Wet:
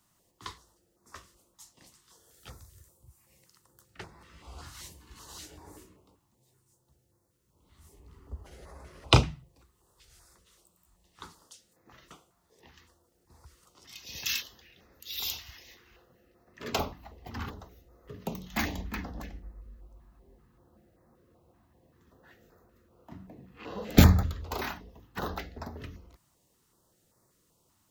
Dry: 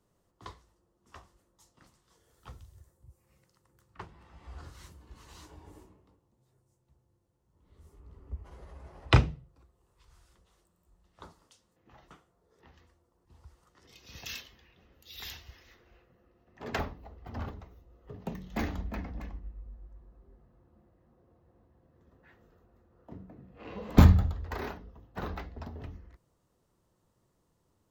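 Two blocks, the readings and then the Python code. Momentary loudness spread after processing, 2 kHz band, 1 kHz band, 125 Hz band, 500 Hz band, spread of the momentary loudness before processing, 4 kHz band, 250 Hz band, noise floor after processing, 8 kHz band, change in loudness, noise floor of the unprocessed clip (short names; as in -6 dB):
25 LU, +3.0 dB, +2.5 dB, -0.5 dB, +2.5 dB, 25 LU, +8.5 dB, +1.5 dB, -71 dBFS, +11.5 dB, +0.5 dB, -74 dBFS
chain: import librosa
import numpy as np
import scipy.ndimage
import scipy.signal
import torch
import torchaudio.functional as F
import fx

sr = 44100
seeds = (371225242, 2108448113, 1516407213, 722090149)

y = fx.tilt_eq(x, sr, slope=2.0)
y = fx.filter_held_notch(y, sr, hz=5.2, low_hz=470.0, high_hz=3000.0)
y = y * 10.0 ** (6.0 / 20.0)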